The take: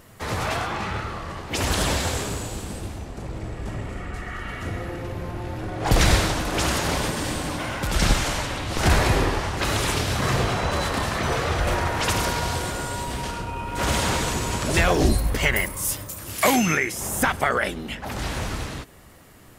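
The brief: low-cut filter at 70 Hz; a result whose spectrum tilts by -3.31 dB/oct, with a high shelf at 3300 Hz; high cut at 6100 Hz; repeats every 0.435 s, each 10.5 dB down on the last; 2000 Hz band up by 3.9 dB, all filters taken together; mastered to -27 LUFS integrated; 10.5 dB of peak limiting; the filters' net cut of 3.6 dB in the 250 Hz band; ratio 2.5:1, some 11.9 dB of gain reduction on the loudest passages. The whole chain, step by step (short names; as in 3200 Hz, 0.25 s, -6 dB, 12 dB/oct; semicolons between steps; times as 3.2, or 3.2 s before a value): HPF 70 Hz; LPF 6100 Hz; bell 250 Hz -5 dB; bell 2000 Hz +3.5 dB; high shelf 3300 Hz +4.5 dB; compressor 2.5:1, threshold -33 dBFS; limiter -24 dBFS; feedback echo 0.435 s, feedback 30%, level -10.5 dB; gain +6.5 dB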